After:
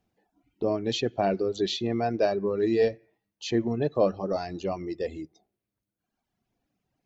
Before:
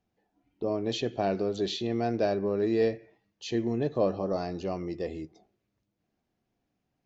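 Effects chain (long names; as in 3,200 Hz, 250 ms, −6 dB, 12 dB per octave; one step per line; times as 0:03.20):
reverb reduction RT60 1.4 s
level +4 dB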